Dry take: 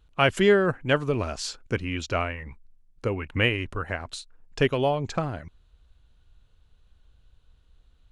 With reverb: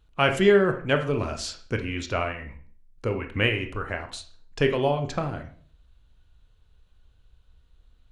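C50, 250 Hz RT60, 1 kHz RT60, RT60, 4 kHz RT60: 10.5 dB, 0.55 s, 0.45 s, 0.50 s, 0.40 s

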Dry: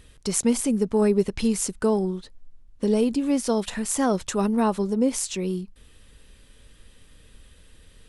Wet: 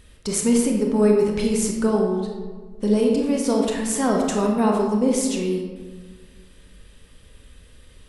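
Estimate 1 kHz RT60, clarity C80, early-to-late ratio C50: 1.4 s, 5.0 dB, 2.5 dB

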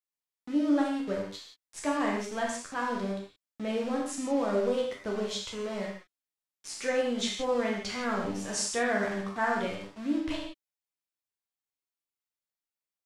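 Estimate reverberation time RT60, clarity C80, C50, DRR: non-exponential decay, 5.5 dB, 2.5 dB, −2.5 dB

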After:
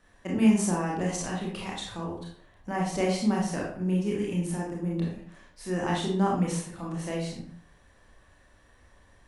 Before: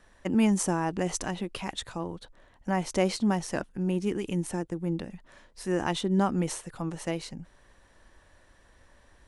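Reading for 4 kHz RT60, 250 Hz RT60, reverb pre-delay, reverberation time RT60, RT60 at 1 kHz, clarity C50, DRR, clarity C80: 0.40 s, 0.55 s, 25 ms, 0.55 s, 0.55 s, 2.5 dB, −3.5 dB, 7.0 dB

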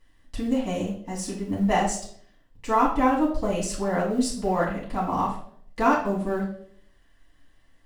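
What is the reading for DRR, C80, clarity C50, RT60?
−6.0 dB, 10.0 dB, 6.0 dB, 0.65 s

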